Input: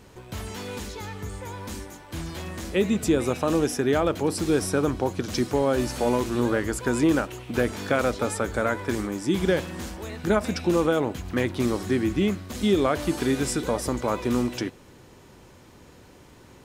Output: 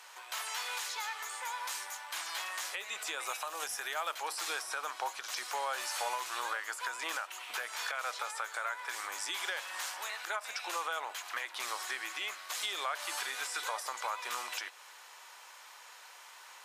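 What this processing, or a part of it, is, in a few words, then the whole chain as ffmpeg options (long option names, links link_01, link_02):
podcast mastering chain: -filter_complex "[0:a]asettb=1/sr,asplit=3[link_01][link_02][link_03];[link_01]atrim=end=3.274[link_04];[link_02]atrim=start=3.27:end=4.15,asetpts=PTS-STARTPTS,afade=type=in:duration=0.004:curve=qsin,afade=type=out:start_time=0.876:duration=0.004:curve=qsin,aemphasis=mode=production:type=50kf[link_05];[link_03]atrim=start=4.146[link_06];[link_04][link_05]acrossfade=duration=0.004:curve1=hsin:curve2=qsin[link_07];[link_07][link_06]acrossfade=duration=0.004:curve1=qsin:curve2=hsin,highpass=frequency=95:width=0.5412,highpass=frequency=95:width=1.3066,highpass=frequency=880:width=0.5412,highpass=frequency=880:width=1.3066,deesser=0.75,acompressor=threshold=-40dB:ratio=2,alimiter=level_in=4.5dB:limit=-24dB:level=0:latency=1:release=234,volume=-4.5dB,volume=5dB" -ar 32000 -c:a libmp3lame -b:a 96k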